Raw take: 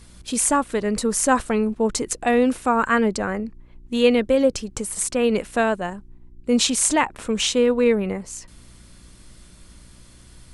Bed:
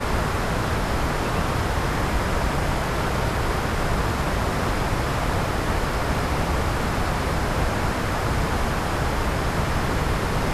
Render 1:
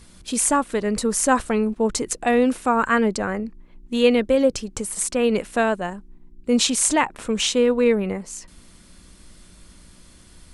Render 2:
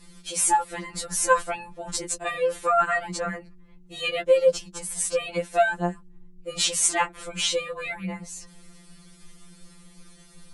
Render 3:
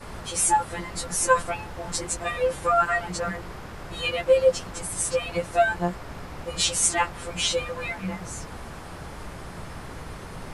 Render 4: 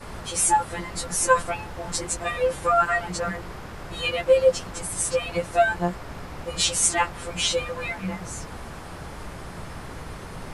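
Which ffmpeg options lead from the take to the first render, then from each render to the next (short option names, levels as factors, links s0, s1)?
-af "bandreject=f=60:t=h:w=4,bandreject=f=120:t=h:w=4"
-af "afftfilt=real='re*2.83*eq(mod(b,8),0)':imag='im*2.83*eq(mod(b,8),0)':win_size=2048:overlap=0.75"
-filter_complex "[1:a]volume=0.168[s0];[0:a][s0]amix=inputs=2:normalize=0"
-af "volume=1.12"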